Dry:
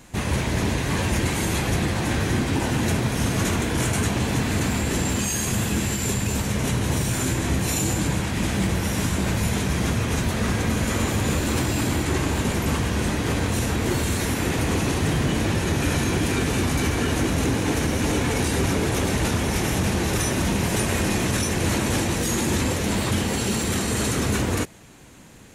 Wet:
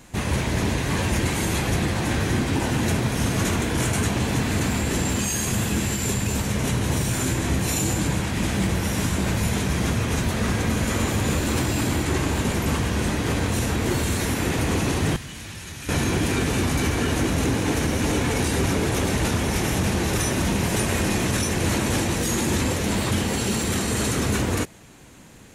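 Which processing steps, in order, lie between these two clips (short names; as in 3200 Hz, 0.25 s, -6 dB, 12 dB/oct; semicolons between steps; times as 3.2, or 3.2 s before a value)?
15.16–15.89 passive tone stack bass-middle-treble 5-5-5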